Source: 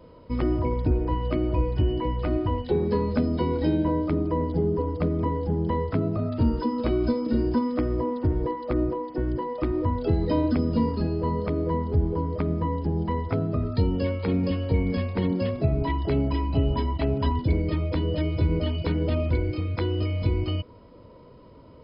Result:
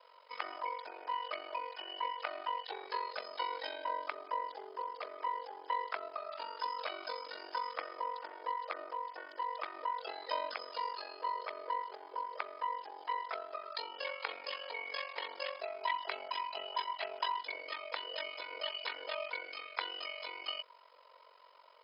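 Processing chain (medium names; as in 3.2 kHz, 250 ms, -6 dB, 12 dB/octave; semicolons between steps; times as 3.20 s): Bessel high-pass 1.1 kHz, order 6; ring modulator 23 Hz; trim +4 dB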